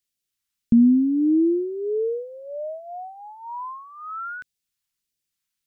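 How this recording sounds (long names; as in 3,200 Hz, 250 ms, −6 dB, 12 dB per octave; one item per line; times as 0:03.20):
phaser sweep stages 2, 1.6 Hz, lowest notch 490–1,000 Hz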